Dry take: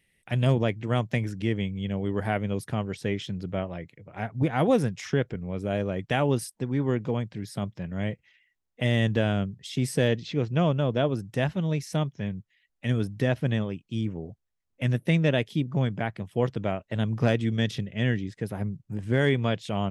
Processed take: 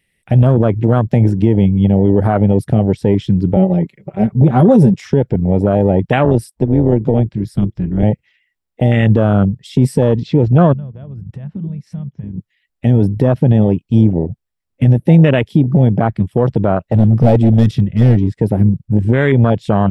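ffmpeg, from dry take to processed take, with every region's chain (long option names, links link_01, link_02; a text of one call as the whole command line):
ffmpeg -i in.wav -filter_complex "[0:a]asettb=1/sr,asplit=3[link_01][link_02][link_03];[link_01]atrim=end=3.564[link_04];[link_02]atrim=start=3.56:end=4.94,asetpts=PTS-STARTPTS,afade=type=in:duration=0.004:curve=qsin,afade=type=out:start_time=1.376:duration=0.004:curve=qsin,aecho=1:1:5.2:0.99,atrim=end_sample=60858,acrossover=split=500|3000[link_05][link_06][link_07];[link_06]acompressor=threshold=-46dB:ratio=2:attack=3.2:release=140:knee=2.83:detection=peak[link_08];[link_05][link_08][link_07]amix=inputs=3:normalize=0[link_09];[link_03]atrim=start=4.936[link_10];[link_04][link_09]acrossfade=duration=0.004:curve1=hsin:curve2=qsin[link_11];[link_11][link_10]acrossfade=duration=0.004:curve1=qsin:curve2=hsin,asettb=1/sr,asplit=3[link_12][link_13][link_14];[link_12]atrim=end=6.254[link_15];[link_13]atrim=start=6.25:end=8.03,asetpts=PTS-STARTPTS,afade=type=in:duration=0.004:curve=qsin,afade=type=out:start_time=1.776:duration=0.004:curve=qsin,highpass=frequency=87:width=0.5412,highpass=frequency=87:width=1.3066,tremolo=f=230:d=0.667[link_16];[link_14]atrim=start=8.026[link_17];[link_15][link_16]acrossfade=duration=0.004:curve1=hsin:curve2=qsin[link_18];[link_18][link_17]acrossfade=duration=0.004:curve1=qsin:curve2=hsin,asettb=1/sr,asplit=3[link_19][link_20][link_21];[link_19]atrim=end=10.734[link_22];[link_20]atrim=start=10.73:end=12.38,asetpts=PTS-STARTPTS,afade=type=in:duration=0.004:curve=qsin,afade=type=out:start_time=1.646:duration=0.004:curve=qsin,lowpass=frequency=1200:poles=1,acompressor=threshold=-41dB:ratio=6:attack=3.2:release=140:knee=1:detection=peak[link_23];[link_21]atrim=start=12.376[link_24];[link_22][link_23]acrossfade=duration=0.004:curve1=hsin:curve2=qsin[link_25];[link_25][link_24]acrossfade=duration=0.004:curve1=qsin:curve2=hsin,asettb=1/sr,asplit=3[link_26][link_27][link_28];[link_26]atrim=end=16.784[link_29];[link_27]atrim=start=16.78:end=18.35,asetpts=PTS-STARTPTS,afade=type=in:duration=0.004:curve=qsin,afade=type=out:start_time=1.566:duration=0.004:curve=qsin,asubboost=boost=6:cutoff=78,asoftclip=type=hard:threshold=-25.5dB[link_30];[link_28]atrim=start=18.346[link_31];[link_29][link_30]acrossfade=duration=0.004:curve1=hsin:curve2=qsin[link_32];[link_32][link_31]acrossfade=duration=0.004:curve1=qsin:curve2=hsin,afwtdn=0.0355,bandreject=frequency=6400:width=9.8,alimiter=level_in=21dB:limit=-1dB:release=50:level=0:latency=1,volume=-1dB" out.wav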